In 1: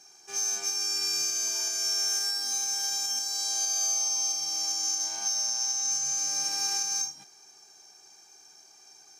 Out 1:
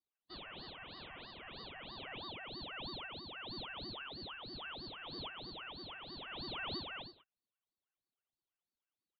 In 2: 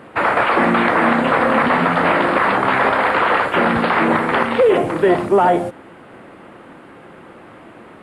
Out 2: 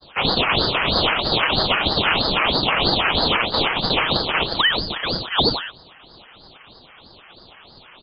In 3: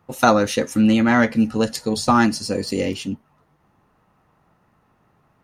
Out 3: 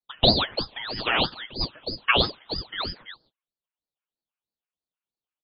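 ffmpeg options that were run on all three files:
-filter_complex "[0:a]agate=range=-32dB:threshold=-43dB:ratio=16:detection=peak,acrossover=split=480 2100:gain=0.1 1 0.0891[a][b][c];[a][b][c]amix=inputs=3:normalize=0,aecho=1:1:6.4:0.76,lowpass=f=2.5k:t=q:w=0.5098,lowpass=f=2.5k:t=q:w=0.6013,lowpass=f=2.5k:t=q:w=0.9,lowpass=f=2.5k:t=q:w=2.563,afreqshift=-2900,aeval=exprs='val(0)*sin(2*PI*1500*n/s+1500*0.65/3.1*sin(2*PI*3.1*n/s))':c=same"

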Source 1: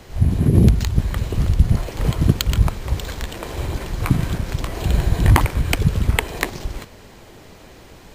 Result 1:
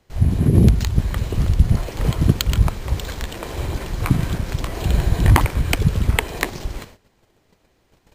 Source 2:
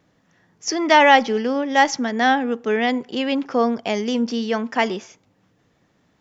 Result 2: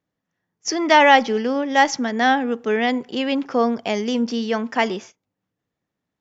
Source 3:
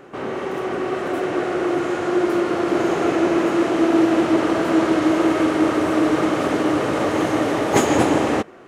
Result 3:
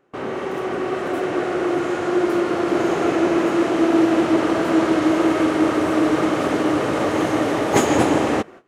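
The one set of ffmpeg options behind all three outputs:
-af "agate=range=-19dB:threshold=-39dB:ratio=16:detection=peak"

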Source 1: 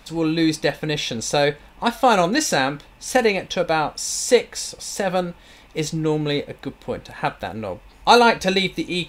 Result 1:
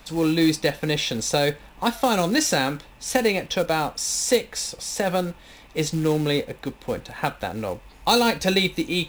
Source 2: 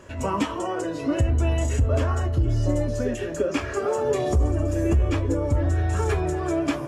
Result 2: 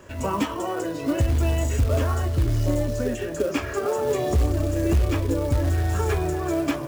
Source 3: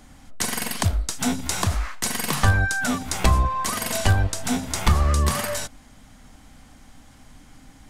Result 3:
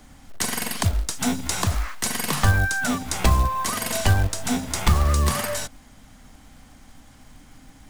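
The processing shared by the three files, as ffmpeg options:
-filter_complex "[0:a]acrusher=bits=5:mode=log:mix=0:aa=0.000001,acrossover=split=350|3000[a][b][c];[b]acompressor=threshold=-20dB:ratio=6[d];[a][d][c]amix=inputs=3:normalize=0"

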